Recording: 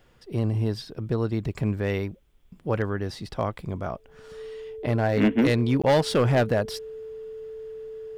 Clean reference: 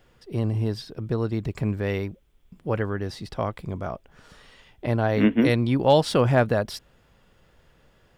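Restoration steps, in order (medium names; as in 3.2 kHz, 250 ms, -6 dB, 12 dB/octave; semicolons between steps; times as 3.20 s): clip repair -15 dBFS; band-stop 440 Hz, Q 30; interpolate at 5.82 s, 16 ms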